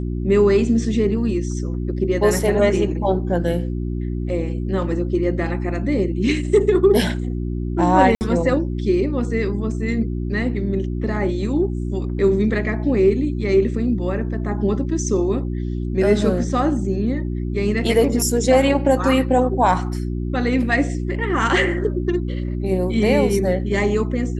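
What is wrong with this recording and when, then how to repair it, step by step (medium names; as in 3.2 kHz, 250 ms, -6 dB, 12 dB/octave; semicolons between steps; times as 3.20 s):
hum 60 Hz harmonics 6 -24 dBFS
8.15–8.21 s: dropout 59 ms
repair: de-hum 60 Hz, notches 6; interpolate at 8.15 s, 59 ms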